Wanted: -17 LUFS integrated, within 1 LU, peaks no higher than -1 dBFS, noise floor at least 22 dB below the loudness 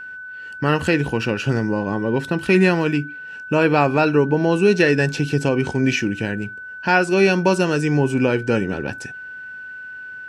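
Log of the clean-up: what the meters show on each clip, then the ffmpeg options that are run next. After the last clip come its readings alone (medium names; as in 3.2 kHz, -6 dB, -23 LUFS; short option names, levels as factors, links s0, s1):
steady tone 1.5 kHz; tone level -32 dBFS; loudness -19.0 LUFS; peak level -3.0 dBFS; loudness target -17.0 LUFS
-> -af "bandreject=f=1500:w=30"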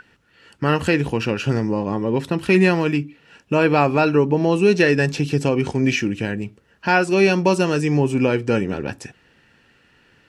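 steady tone not found; loudness -19.0 LUFS; peak level -3.5 dBFS; loudness target -17.0 LUFS
-> -af "volume=1.26"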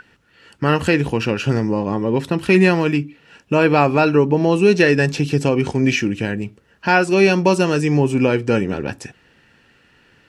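loudness -17.0 LUFS; peak level -1.5 dBFS; noise floor -56 dBFS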